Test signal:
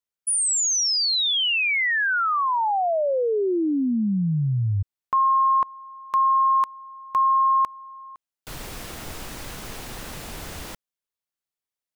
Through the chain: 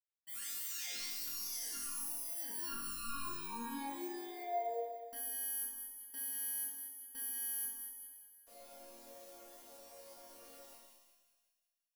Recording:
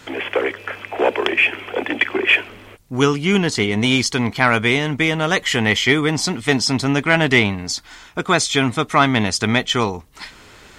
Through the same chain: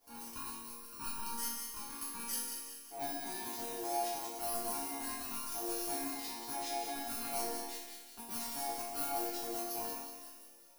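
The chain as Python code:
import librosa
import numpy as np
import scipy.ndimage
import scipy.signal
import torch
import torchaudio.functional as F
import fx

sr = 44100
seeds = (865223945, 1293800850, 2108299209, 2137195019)

p1 = fx.bit_reversed(x, sr, seeds[0], block=32)
p2 = np.clip(10.0 ** (21.0 / 20.0) * p1, -1.0, 1.0) / 10.0 ** (21.0 / 20.0)
p3 = p1 + F.gain(torch.from_numpy(p2), -5.5).numpy()
p4 = p3 * np.sin(2.0 * np.pi * 570.0 * np.arange(len(p3)) / sr)
p5 = fx.resonator_bank(p4, sr, root=58, chord='minor', decay_s=0.81)
y = p5 + fx.echo_split(p5, sr, split_hz=1500.0, low_ms=123, high_ms=185, feedback_pct=52, wet_db=-6.0, dry=0)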